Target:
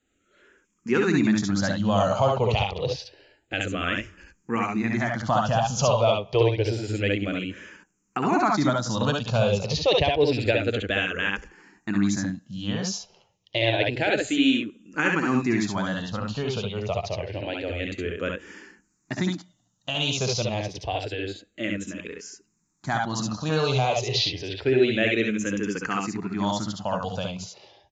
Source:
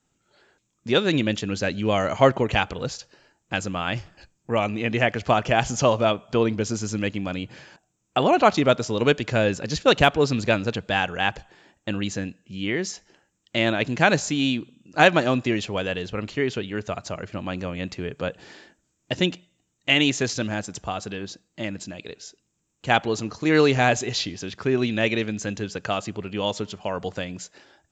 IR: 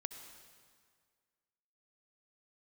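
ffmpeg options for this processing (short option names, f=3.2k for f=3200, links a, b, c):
-filter_complex "[0:a]aresample=16000,aresample=44100,alimiter=limit=-11dB:level=0:latency=1:release=197,aecho=1:1:60|70:0.447|0.668,asplit=2[a][b];[b]afreqshift=-0.28[c];[a][c]amix=inputs=2:normalize=1,volume=2dB"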